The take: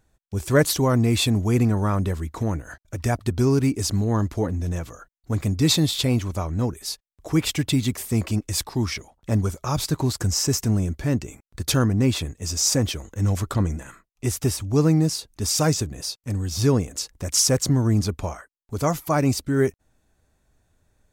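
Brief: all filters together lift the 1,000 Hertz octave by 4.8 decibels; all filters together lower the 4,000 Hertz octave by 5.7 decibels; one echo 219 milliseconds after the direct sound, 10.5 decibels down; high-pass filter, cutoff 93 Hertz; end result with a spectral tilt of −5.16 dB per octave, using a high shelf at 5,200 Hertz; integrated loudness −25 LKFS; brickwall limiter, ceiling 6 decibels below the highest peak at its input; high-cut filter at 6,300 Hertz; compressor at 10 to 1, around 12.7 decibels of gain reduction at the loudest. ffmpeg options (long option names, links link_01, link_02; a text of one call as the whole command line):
ffmpeg -i in.wav -af "highpass=93,lowpass=6300,equalizer=frequency=1000:width_type=o:gain=6.5,equalizer=frequency=4000:width_type=o:gain=-4.5,highshelf=frequency=5200:gain=-3.5,acompressor=threshold=-23dB:ratio=10,alimiter=limit=-19dB:level=0:latency=1,aecho=1:1:219:0.299,volume=5.5dB" out.wav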